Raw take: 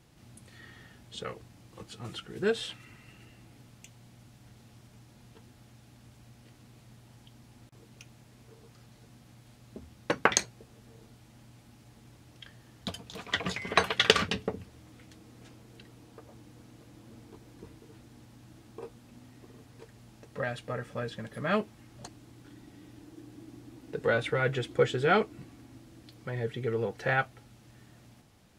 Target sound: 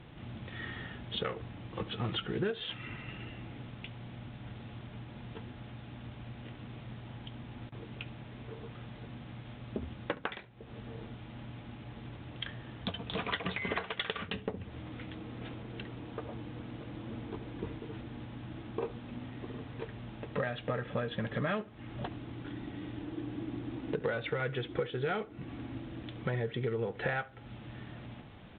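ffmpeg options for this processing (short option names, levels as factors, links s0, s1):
-filter_complex "[0:a]acompressor=threshold=0.01:ratio=16,asoftclip=type=hard:threshold=0.0237,asplit=2[s0][s1];[s1]adelay=70,lowpass=f=2000:p=1,volume=0.126,asplit=2[s2][s3];[s3]adelay=70,lowpass=f=2000:p=1,volume=0.34,asplit=2[s4][s5];[s5]adelay=70,lowpass=f=2000:p=1,volume=0.34[s6];[s2][s4][s6]amix=inputs=3:normalize=0[s7];[s0][s7]amix=inputs=2:normalize=0,volume=3.16" -ar 8000 -c:a adpcm_g726 -b:a 32k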